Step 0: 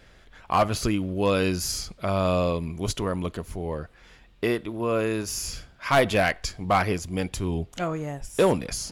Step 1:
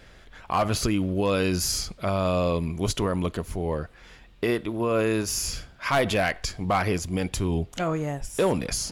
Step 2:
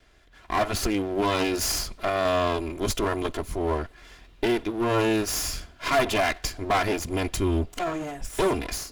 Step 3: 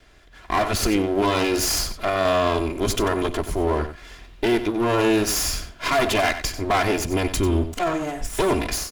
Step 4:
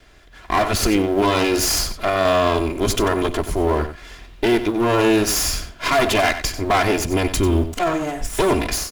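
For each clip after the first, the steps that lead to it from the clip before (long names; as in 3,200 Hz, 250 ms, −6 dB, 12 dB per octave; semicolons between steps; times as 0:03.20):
brickwall limiter −18.5 dBFS, peak gain reduction 7.5 dB; level +3 dB
lower of the sound and its delayed copy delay 2.9 ms; automatic gain control gain up to 9.5 dB; level −7.5 dB
brickwall limiter −18 dBFS, peak gain reduction 5.5 dB; slap from a distant wall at 16 metres, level −11 dB; level +5.5 dB
log-companded quantiser 8 bits; level +3 dB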